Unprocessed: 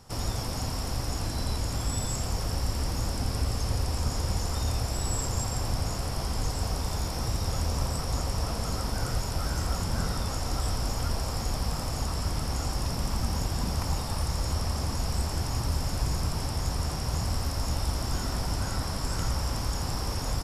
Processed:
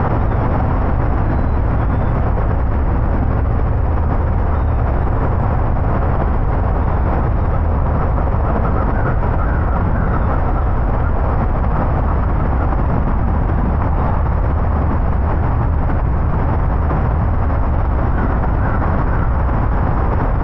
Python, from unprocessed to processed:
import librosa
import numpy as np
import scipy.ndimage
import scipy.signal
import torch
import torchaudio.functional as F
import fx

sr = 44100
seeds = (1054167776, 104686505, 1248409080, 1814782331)

y = scipy.signal.sosfilt(scipy.signal.butter(4, 1800.0, 'lowpass', fs=sr, output='sos'), x)
y = fx.env_flatten(y, sr, amount_pct=100)
y = y * librosa.db_to_amplitude(8.5)